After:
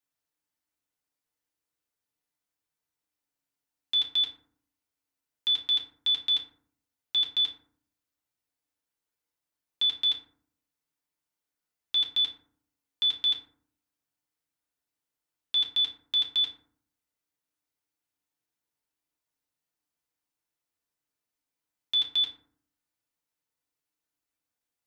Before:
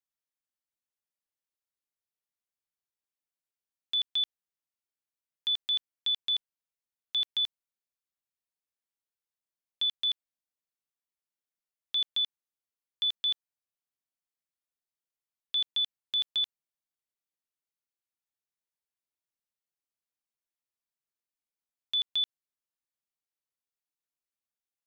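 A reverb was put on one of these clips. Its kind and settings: FDN reverb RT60 0.56 s, low-frequency decay 1.45×, high-frequency decay 0.45×, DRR -1.5 dB; gain +2.5 dB

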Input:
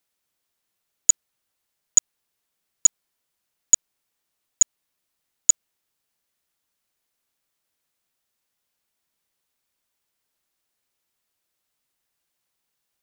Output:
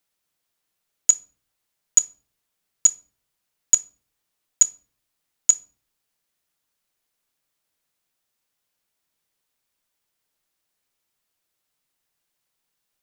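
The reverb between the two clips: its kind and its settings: shoebox room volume 380 m³, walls furnished, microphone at 0.47 m

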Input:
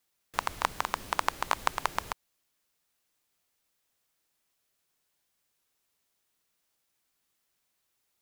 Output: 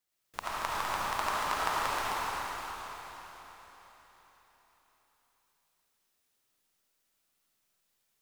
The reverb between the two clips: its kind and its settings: digital reverb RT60 4.3 s, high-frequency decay 1×, pre-delay 30 ms, DRR -8.5 dB; gain -8.5 dB

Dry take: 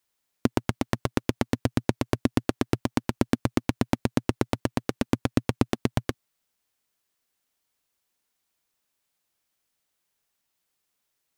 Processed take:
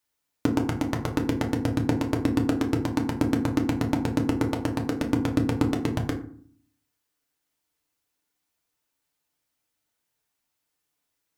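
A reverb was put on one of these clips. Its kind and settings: FDN reverb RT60 0.51 s, low-frequency decay 1.55×, high-frequency decay 0.5×, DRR 1 dB; gain -3 dB

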